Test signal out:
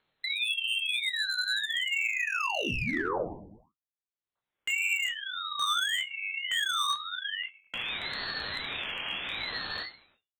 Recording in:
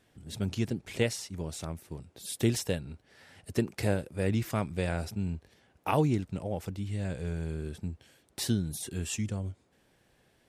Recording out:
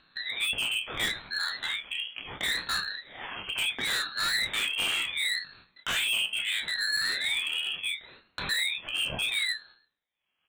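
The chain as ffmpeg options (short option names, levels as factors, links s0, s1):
-filter_complex "[0:a]asplit=2[s0][s1];[s1]asoftclip=type=tanh:threshold=0.0562,volume=0.299[s2];[s0][s2]amix=inputs=2:normalize=0,lowpass=f=2600:t=q:w=0.5098,lowpass=f=2600:t=q:w=0.6013,lowpass=f=2600:t=q:w=0.9,lowpass=f=2600:t=q:w=2.563,afreqshift=-3100,acontrast=65,agate=range=0.00282:threshold=0.00282:ratio=16:detection=peak,flanger=delay=17.5:depth=7.2:speed=1.8,asplit=2[s3][s4];[s4]adelay=27,volume=0.631[s5];[s3][s5]amix=inputs=2:normalize=0,asplit=2[s6][s7];[s7]adelay=105,lowpass=f=1900:p=1,volume=0.133,asplit=2[s8][s9];[s9]adelay=105,lowpass=f=1900:p=1,volume=0.39,asplit=2[s10][s11];[s11]adelay=105,lowpass=f=1900:p=1,volume=0.39[s12];[s6][s8][s10][s12]amix=inputs=4:normalize=0,acompressor=mode=upward:threshold=0.0398:ratio=2.5,volume=21.1,asoftclip=hard,volume=0.0473,lowshelf=f=210:g=9.5,flanger=delay=8.4:depth=8.5:regen=58:speed=0.25:shape=sinusoidal,aeval=exprs='val(0)*sin(2*PI*740*n/s+740*0.75/0.72*sin(2*PI*0.72*n/s))':c=same,volume=2.24"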